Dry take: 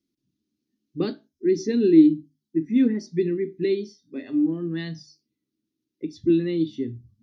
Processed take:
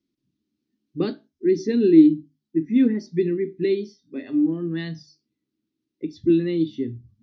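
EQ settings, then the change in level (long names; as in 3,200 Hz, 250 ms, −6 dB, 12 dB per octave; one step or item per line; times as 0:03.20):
low-pass filter 4,900 Hz 12 dB per octave
+1.5 dB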